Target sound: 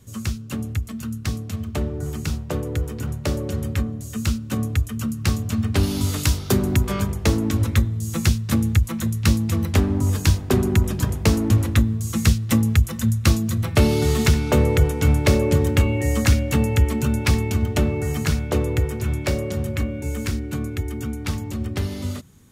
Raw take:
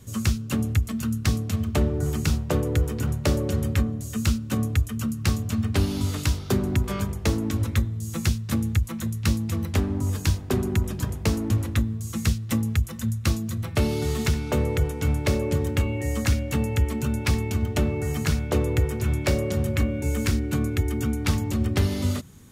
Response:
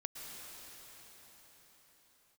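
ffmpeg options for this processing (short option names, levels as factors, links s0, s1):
-filter_complex "[0:a]asettb=1/sr,asplit=3[s0][s1][s2];[s0]atrim=end=5.834[s3];[s1]atrim=start=5.83:end=6.84,asetpts=PTS-STARTPTS,afade=t=in:d=0.004:c=qsin,afade=t=out:st=1.006:d=0.004:c=qsin,highshelf=f=6000:g=6.5[s4];[s2]atrim=start=6.836[s5];[s3][s4]acrossfade=d=0.004:c1=hsin:c2=qsin[s6];[s6][s5]acrossfade=d=0.004:c1=qsin:c2=hsin,dynaudnorm=f=330:g=31:m=3.76,volume=0.708"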